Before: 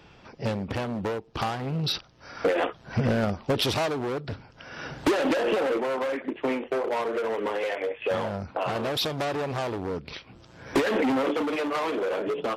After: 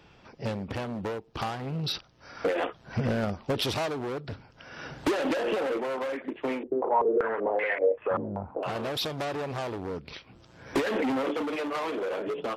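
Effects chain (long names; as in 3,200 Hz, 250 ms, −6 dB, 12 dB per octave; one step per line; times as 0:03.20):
0:06.63–0:08.63: low-pass on a step sequencer 5.2 Hz 320–2,000 Hz
level −3.5 dB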